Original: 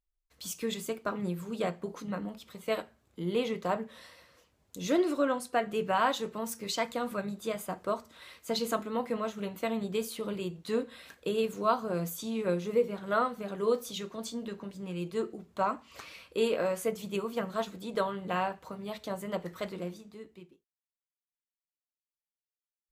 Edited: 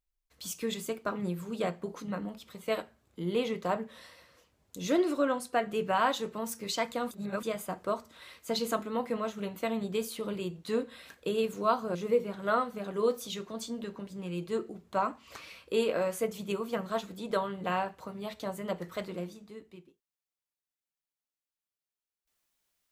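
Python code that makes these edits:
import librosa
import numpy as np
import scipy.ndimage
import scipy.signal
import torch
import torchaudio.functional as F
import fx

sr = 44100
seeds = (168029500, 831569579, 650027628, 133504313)

y = fx.edit(x, sr, fx.reverse_span(start_s=7.11, length_s=0.32),
    fx.cut(start_s=11.95, length_s=0.64), tone=tone)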